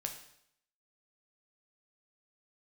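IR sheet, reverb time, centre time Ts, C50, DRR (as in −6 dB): 0.70 s, 18 ms, 8.5 dB, 3.5 dB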